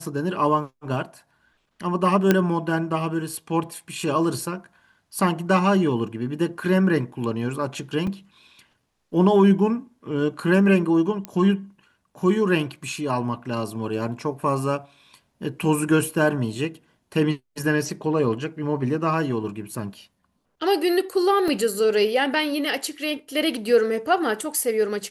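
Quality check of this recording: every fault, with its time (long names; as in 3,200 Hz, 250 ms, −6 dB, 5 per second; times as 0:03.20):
0:02.31: click −4 dBFS
0:08.07: drop-out 3.9 ms
0:11.25: click −15 dBFS
0:21.48: drop-out 2.2 ms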